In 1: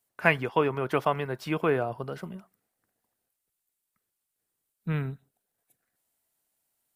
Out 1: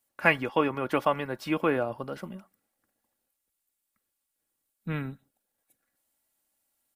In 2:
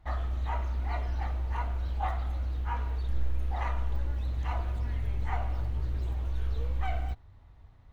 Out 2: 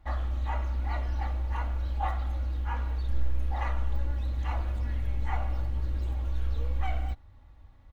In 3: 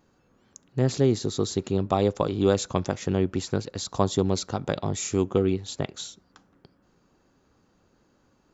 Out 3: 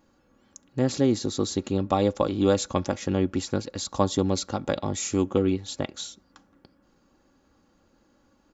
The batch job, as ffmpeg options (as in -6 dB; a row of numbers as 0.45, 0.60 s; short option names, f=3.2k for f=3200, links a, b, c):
-af "aecho=1:1:3.6:0.45"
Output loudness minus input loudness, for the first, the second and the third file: 0.0, +1.0, 0.0 LU